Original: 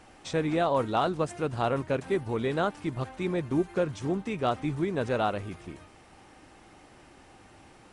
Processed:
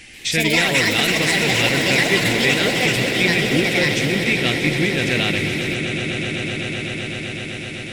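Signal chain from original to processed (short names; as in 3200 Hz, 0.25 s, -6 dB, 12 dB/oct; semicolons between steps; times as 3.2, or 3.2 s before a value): bell 770 Hz -10.5 dB 1.5 oct; on a send: swelling echo 0.127 s, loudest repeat 8, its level -12.5 dB; on the sum: echoes that change speed 0.137 s, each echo +6 st, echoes 3; resonant high shelf 1600 Hz +9 dB, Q 3; gain +8 dB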